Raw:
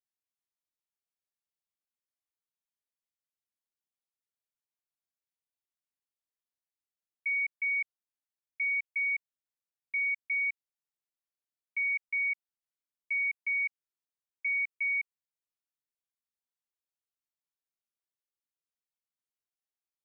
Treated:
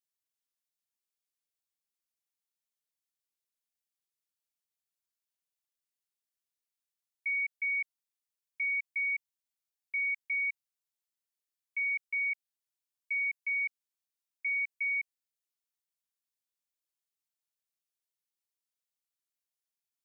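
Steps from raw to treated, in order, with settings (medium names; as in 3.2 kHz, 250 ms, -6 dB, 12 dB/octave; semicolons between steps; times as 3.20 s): treble shelf 2.1 kHz +10.5 dB; trim -7 dB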